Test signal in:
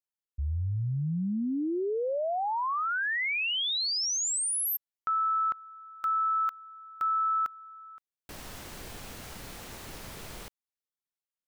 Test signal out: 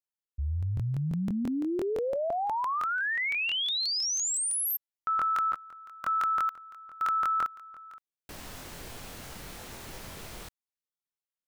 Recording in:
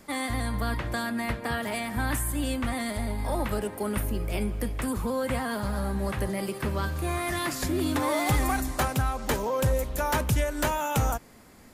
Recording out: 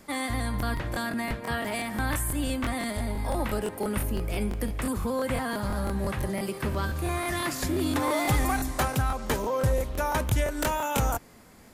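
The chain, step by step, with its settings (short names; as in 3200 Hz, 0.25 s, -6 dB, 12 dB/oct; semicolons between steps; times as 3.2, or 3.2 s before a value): crackling interface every 0.17 s, samples 1024, repeat, from 0.58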